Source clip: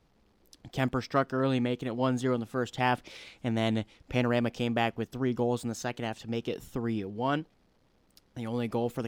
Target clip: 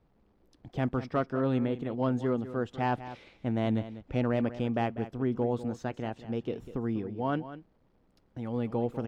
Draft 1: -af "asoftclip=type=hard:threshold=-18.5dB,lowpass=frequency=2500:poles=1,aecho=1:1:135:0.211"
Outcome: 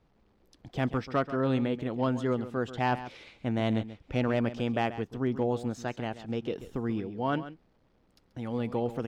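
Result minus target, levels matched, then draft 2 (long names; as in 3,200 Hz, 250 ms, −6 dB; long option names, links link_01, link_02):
echo 62 ms early; 2,000 Hz band +3.0 dB
-af "asoftclip=type=hard:threshold=-18.5dB,lowpass=frequency=1100:poles=1,aecho=1:1:197:0.211"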